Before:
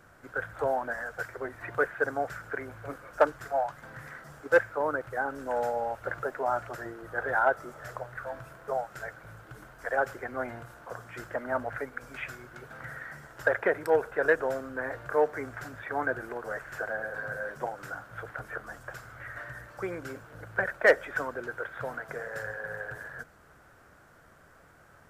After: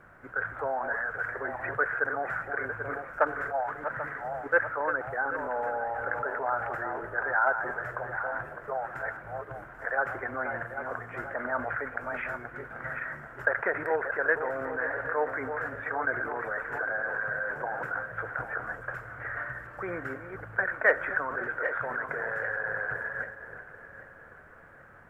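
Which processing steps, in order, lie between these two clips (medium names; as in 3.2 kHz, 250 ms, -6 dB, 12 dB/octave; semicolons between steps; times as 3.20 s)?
backward echo that repeats 394 ms, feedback 60%, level -10 dB; dynamic bell 1.3 kHz, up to +7 dB, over -41 dBFS, Q 0.71; in parallel at -1 dB: compressor with a negative ratio -35 dBFS, ratio -1; on the sum: added noise pink -59 dBFS; resonant high shelf 2.8 kHz -13.5 dB, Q 1.5; trim -8 dB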